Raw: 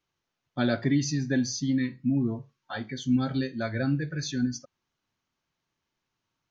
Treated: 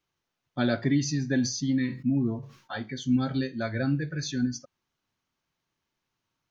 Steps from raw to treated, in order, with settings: 1.33–2.77 sustainer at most 110 dB/s

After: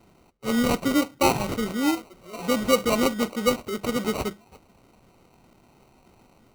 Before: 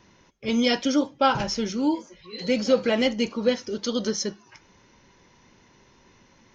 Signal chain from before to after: sample-rate reducer 1700 Hz, jitter 0%

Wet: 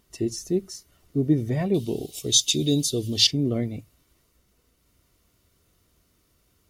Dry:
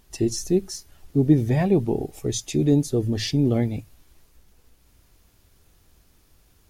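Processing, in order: 1.74–3.27 resonant high shelf 2400 Hz +12.5 dB, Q 3; notch comb 830 Hz; gain -3.5 dB

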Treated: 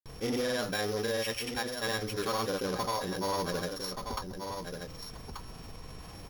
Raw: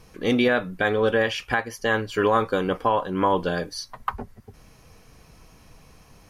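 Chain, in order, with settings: sample sorter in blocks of 8 samples; soft clip -18 dBFS, distortion -13 dB; grains, pitch spread up and down by 0 st; on a send: echo 1.184 s -13.5 dB; on the sum: fast leveller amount 50%; gain -8 dB

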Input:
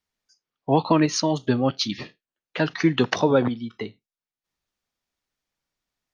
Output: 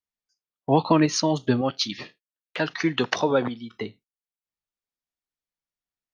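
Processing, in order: gate -51 dBFS, range -13 dB; 1.61–3.71 low shelf 330 Hz -8 dB

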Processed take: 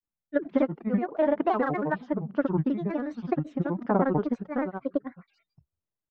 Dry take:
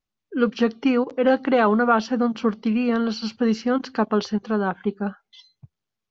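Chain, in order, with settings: LPF 1300 Hz 12 dB/oct; transient shaper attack +8 dB, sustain +2 dB; grains 83 ms, grains 25/s, pitch spread up and down by 7 st; gain -8.5 dB

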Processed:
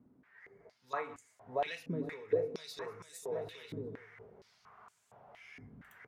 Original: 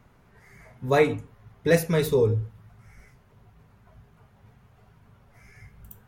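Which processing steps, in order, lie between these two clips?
compressor 6:1, threshold -25 dBFS, peak gain reduction 11 dB; on a send: bouncing-ball echo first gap 0.65 s, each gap 0.7×, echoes 5; on the sum: vocal rider within 5 dB 0.5 s; stepped band-pass 4.3 Hz 270–7700 Hz; gain +6 dB

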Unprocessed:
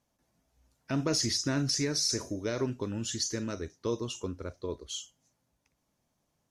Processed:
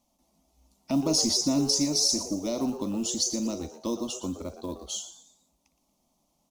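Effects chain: short-mantissa float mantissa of 4-bit; fixed phaser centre 430 Hz, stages 6; dynamic EQ 1900 Hz, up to -7 dB, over -51 dBFS, Q 0.78; on a send: frequency-shifting echo 0.117 s, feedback 38%, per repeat +140 Hz, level -12.5 dB; on the sum: gain +7.5 dB

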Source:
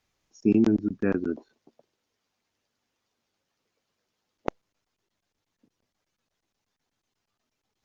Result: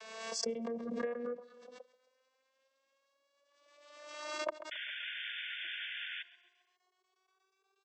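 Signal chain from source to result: vocoder on a gliding note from A3, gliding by +10 st; HPF 540 Hz 12 dB/oct; comb 1.8 ms, depth 82%; compressor 12:1, threshold -47 dBFS, peak gain reduction 18 dB; painted sound noise, 4.71–6.23, 1400–3600 Hz -54 dBFS; feedback echo 0.134 s, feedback 47%, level -19 dB; backwards sustainer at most 41 dB/s; gain +11.5 dB

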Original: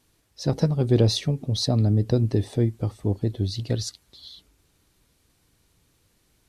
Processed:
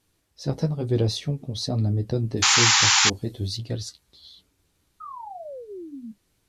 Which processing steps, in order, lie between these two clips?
2.37–3.57 high shelf 3200 Hz +10.5 dB; 5–6.12 painted sound fall 210–1300 Hz -34 dBFS; flange 1.1 Hz, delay 10 ms, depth 5 ms, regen -39%; 2.42–3.1 painted sound noise 760–7400 Hz -18 dBFS

